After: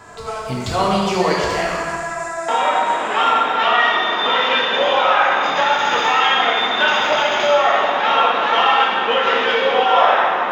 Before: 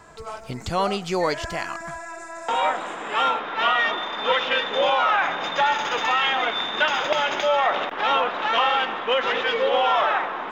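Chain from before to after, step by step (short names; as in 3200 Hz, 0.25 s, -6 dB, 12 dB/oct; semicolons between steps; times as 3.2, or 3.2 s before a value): low shelf 90 Hz -6 dB; in parallel at +1 dB: compressor, threshold -30 dBFS, peak gain reduction 13 dB; on the sum: plate-style reverb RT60 1.8 s, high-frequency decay 0.85×, pre-delay 0 ms, DRR -4.5 dB; gain -2 dB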